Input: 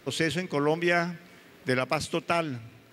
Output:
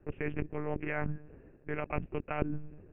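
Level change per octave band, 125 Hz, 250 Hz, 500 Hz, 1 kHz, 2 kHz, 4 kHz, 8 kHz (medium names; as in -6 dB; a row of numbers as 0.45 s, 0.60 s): -4.0 dB, -8.0 dB, -9.5 dB, -10.0 dB, -11.0 dB, -26.0 dB, under -40 dB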